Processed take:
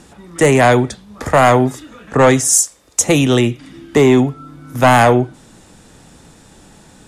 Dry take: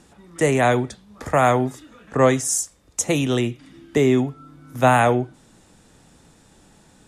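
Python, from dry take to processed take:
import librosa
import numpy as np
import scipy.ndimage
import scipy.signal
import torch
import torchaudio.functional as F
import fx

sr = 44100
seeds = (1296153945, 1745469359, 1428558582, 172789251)

p1 = fx.fold_sine(x, sr, drive_db=8, ceiling_db=-2.5)
p2 = x + (p1 * librosa.db_to_amplitude(-4.0))
p3 = fx.bass_treble(p2, sr, bass_db=-11, treble_db=3, at=(2.53, 3.0))
y = p3 * librosa.db_to_amplitude(-2.0)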